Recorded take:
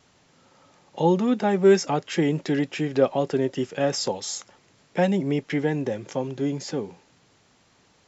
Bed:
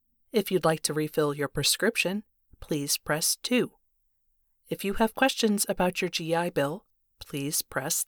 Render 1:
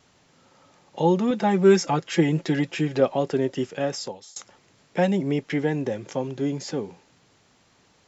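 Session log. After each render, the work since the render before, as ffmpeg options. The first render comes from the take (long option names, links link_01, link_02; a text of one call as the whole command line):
ffmpeg -i in.wav -filter_complex "[0:a]asettb=1/sr,asplit=3[link_01][link_02][link_03];[link_01]atrim=end=1.304[link_04];[link_02]atrim=start=1.3:end=3,asetpts=PTS-STARTPTS,afade=type=in:duration=0.004:curve=qsin,afade=type=out:start_time=1.696:duration=0.004:curve=qsin,aecho=1:1:5.9:0.56,atrim=end_sample=74970[link_05];[link_03]atrim=start=2.996[link_06];[link_04][link_05]acrossfade=duration=0.004:curve1=hsin:curve2=qsin[link_07];[link_07][link_06]acrossfade=duration=0.004:curve1=qsin:curve2=hsin,asplit=2[link_08][link_09];[link_08]atrim=end=4.36,asetpts=PTS-STARTPTS,afade=type=out:start_time=3.64:duration=0.72:silence=0.0707946[link_10];[link_09]atrim=start=4.36,asetpts=PTS-STARTPTS,afade=type=in:duration=0.004:curve=hsin:silence=0.0707946[link_11];[link_10][link_11]concat=n=2:v=0:a=1" out.wav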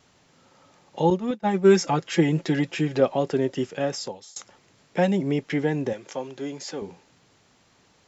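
ffmpeg -i in.wav -filter_complex "[0:a]asettb=1/sr,asplit=3[link_01][link_02][link_03];[link_01]atrim=end=1.104[link_04];[link_02]atrim=start=1.1:end=1.71,asetpts=PTS-STARTPTS,afade=type=in:duration=0.004:curve=qsin,afade=type=out:start_time=0.606:duration=0.004:curve=qsin,agate=range=-33dB:threshold=-18dB:ratio=3:release=100:detection=peak[link_05];[link_03]atrim=start=1.706[link_06];[link_04][link_05]acrossfade=duration=0.004:curve1=hsin:curve2=qsin[link_07];[link_07][link_06]acrossfade=duration=0.004:curve1=qsin:curve2=hsin,asettb=1/sr,asplit=3[link_08][link_09][link_10];[link_08]atrim=end=5.934[link_11];[link_09]atrim=start=5.93:end=6.82,asetpts=PTS-STARTPTS,afade=type=in:duration=0.004:curve=qsin,afade=type=out:start_time=0.886:duration=0.004:curve=qsin,highpass=frequency=570:poles=1[link_12];[link_10]atrim=start=6.816[link_13];[link_11][link_12]acrossfade=duration=0.004:curve1=hsin:curve2=qsin[link_14];[link_14][link_13]acrossfade=duration=0.004:curve1=qsin:curve2=hsin" out.wav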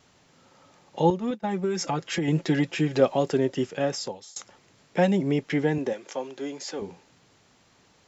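ffmpeg -i in.wav -filter_complex "[0:a]asettb=1/sr,asplit=3[link_01][link_02][link_03];[link_01]atrim=end=1.104[link_04];[link_02]atrim=start=1.1:end=2.28,asetpts=PTS-STARTPTS,afade=type=in:duration=0.004:curve=qsin,afade=type=out:start_time=1.176:duration=0.004:curve=qsin,acompressor=threshold=-22dB:ratio=16:attack=3.2:release=140:knee=1:detection=peak[link_05];[link_03]atrim=start=2.276[link_06];[link_04][link_05]acrossfade=duration=0.004:curve1=hsin:curve2=qsin[link_07];[link_07][link_06]acrossfade=duration=0.004:curve1=qsin:curve2=hsin,asettb=1/sr,asplit=3[link_08][link_09][link_10];[link_08]atrim=end=2.934[link_11];[link_09]atrim=start=2.93:end=3.37,asetpts=PTS-STARTPTS,afade=type=in:duration=0.004:curve=qsin,afade=type=out:start_time=0.436:duration=0.004:curve=qsin,highshelf=frequency=6500:gain=9.5[link_12];[link_10]atrim=start=3.366[link_13];[link_11][link_12]acrossfade=duration=0.004:curve1=hsin:curve2=qsin[link_14];[link_14][link_13]acrossfade=duration=0.004:curve1=qsin:curve2=hsin,asettb=1/sr,asplit=3[link_15][link_16][link_17];[link_15]atrim=end=5.784[link_18];[link_16]atrim=start=5.78:end=6.8,asetpts=PTS-STARTPTS,afade=type=in:duration=0.004:curve=qsin,afade=type=out:start_time=1.016:duration=0.004:curve=qsin,highpass=230[link_19];[link_17]atrim=start=6.796[link_20];[link_18][link_19]acrossfade=duration=0.004:curve1=hsin:curve2=qsin[link_21];[link_21][link_20]acrossfade=duration=0.004:curve1=qsin:curve2=hsin" out.wav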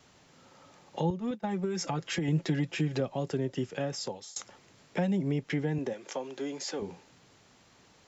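ffmpeg -i in.wav -filter_complex "[0:a]acrossover=split=170[link_01][link_02];[link_02]acompressor=threshold=-32dB:ratio=4[link_03];[link_01][link_03]amix=inputs=2:normalize=0" out.wav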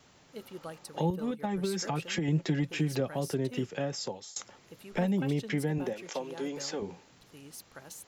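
ffmpeg -i in.wav -i bed.wav -filter_complex "[1:a]volume=-19dB[link_01];[0:a][link_01]amix=inputs=2:normalize=0" out.wav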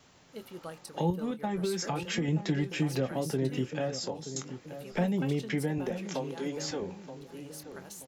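ffmpeg -i in.wav -filter_complex "[0:a]asplit=2[link_01][link_02];[link_02]adelay=23,volume=-11.5dB[link_03];[link_01][link_03]amix=inputs=2:normalize=0,asplit=2[link_04][link_05];[link_05]adelay=928,lowpass=frequency=1200:poles=1,volume=-10.5dB,asplit=2[link_06][link_07];[link_07]adelay=928,lowpass=frequency=1200:poles=1,volume=0.38,asplit=2[link_08][link_09];[link_09]adelay=928,lowpass=frequency=1200:poles=1,volume=0.38,asplit=2[link_10][link_11];[link_11]adelay=928,lowpass=frequency=1200:poles=1,volume=0.38[link_12];[link_04][link_06][link_08][link_10][link_12]amix=inputs=5:normalize=0" out.wav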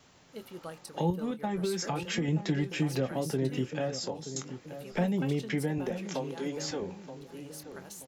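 ffmpeg -i in.wav -af anull out.wav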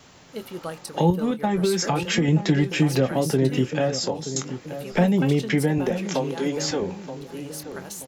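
ffmpeg -i in.wav -af "volume=9.5dB" out.wav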